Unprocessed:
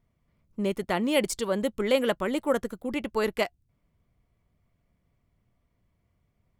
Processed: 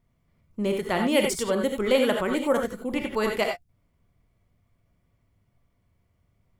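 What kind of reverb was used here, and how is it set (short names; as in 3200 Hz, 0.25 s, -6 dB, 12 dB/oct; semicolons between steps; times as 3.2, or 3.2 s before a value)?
non-linear reverb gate 0.11 s rising, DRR 2.5 dB; gain +1 dB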